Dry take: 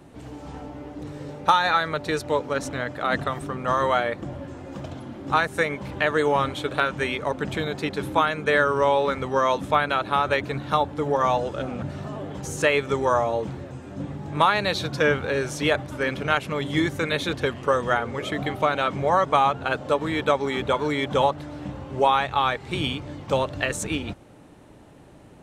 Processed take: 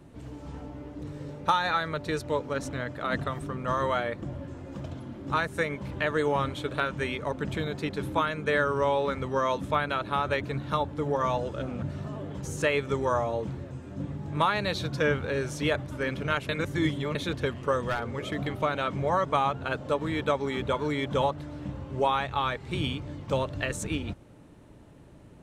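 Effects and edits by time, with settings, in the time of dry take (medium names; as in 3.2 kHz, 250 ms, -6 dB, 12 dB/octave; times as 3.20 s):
16.49–17.15 s: reverse
17.81–18.47 s: hard clipper -18 dBFS
whole clip: bass shelf 210 Hz +7 dB; band-stop 770 Hz, Q 12; trim -6 dB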